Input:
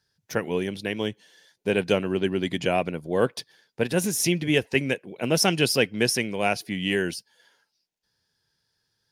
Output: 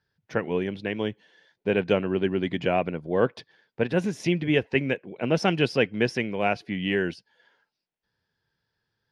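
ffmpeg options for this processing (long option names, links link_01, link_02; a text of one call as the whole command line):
ffmpeg -i in.wav -af "lowpass=2700" out.wav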